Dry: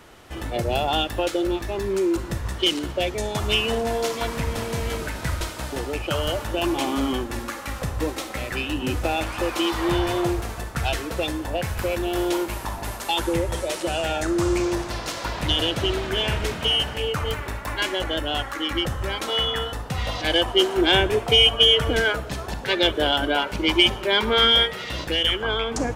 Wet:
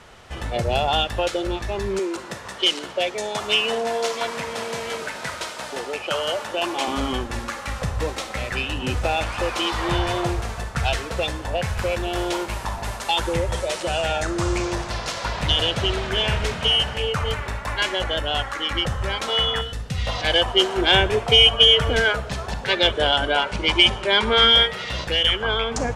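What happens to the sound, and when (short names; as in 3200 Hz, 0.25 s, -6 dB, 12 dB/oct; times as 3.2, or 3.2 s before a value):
1.99–6.88 HPF 280 Hz
19.61–20.07 bell 910 Hz -13 dB 1.6 oct
22.92–24.46 careless resampling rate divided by 2×, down none, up filtered
whole clip: LPF 8500 Hz 12 dB/oct; bell 310 Hz -10.5 dB 0.45 oct; gain +2.5 dB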